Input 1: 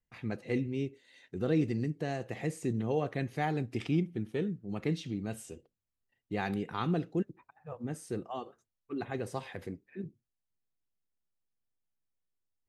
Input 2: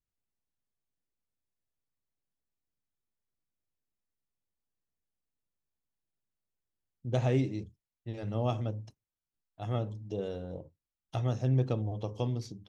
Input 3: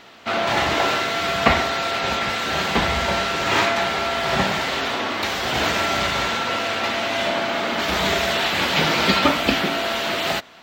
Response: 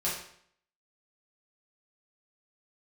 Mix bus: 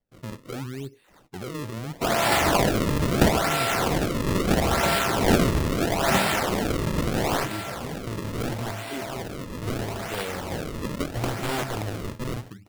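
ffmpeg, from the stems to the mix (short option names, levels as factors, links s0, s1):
-filter_complex "[0:a]equalizer=f=125:t=o:w=1:g=5,equalizer=f=500:t=o:w=1:g=5,equalizer=f=1000:t=o:w=1:g=-5,equalizer=f=4000:t=o:w=1:g=7,equalizer=f=8000:t=o:w=1:g=8,alimiter=level_in=1.19:limit=0.0631:level=0:latency=1:release=10,volume=0.841,volume=0.891[s0];[1:a]acrusher=samples=5:mix=1:aa=0.000001,aeval=exprs='(mod(18.8*val(0)+1,2)-1)/18.8':c=same,volume=1.33[s1];[2:a]adelay=1750,volume=0.891,afade=t=out:st=7.18:d=0.29:silence=0.266073[s2];[s0][s1][s2]amix=inputs=3:normalize=0,acrusher=samples=33:mix=1:aa=0.000001:lfo=1:lforange=52.8:lforate=0.76"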